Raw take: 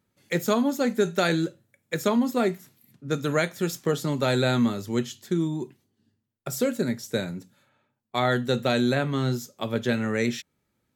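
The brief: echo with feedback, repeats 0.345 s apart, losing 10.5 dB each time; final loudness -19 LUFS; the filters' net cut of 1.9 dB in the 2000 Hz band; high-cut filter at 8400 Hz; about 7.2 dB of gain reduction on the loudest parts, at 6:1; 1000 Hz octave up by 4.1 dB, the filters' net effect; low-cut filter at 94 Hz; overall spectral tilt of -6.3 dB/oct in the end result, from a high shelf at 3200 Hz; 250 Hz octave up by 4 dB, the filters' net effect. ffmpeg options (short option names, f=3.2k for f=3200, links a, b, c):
-af "highpass=94,lowpass=8.4k,equalizer=f=250:t=o:g=4.5,equalizer=f=1k:t=o:g=7.5,equalizer=f=2k:t=o:g=-3.5,highshelf=f=3.2k:g=-7.5,acompressor=threshold=-22dB:ratio=6,aecho=1:1:345|690|1035:0.299|0.0896|0.0269,volume=9dB"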